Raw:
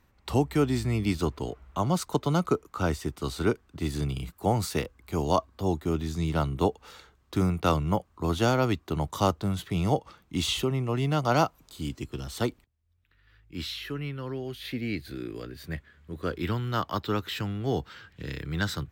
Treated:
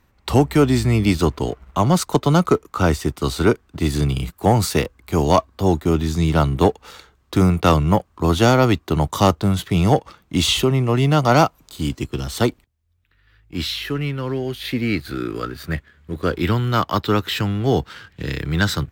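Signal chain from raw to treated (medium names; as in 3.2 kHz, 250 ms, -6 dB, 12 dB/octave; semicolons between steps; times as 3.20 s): 14.83–15.73 s: peaking EQ 1.3 kHz +13.5 dB 0.3 oct; waveshaping leveller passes 1; trim +6.5 dB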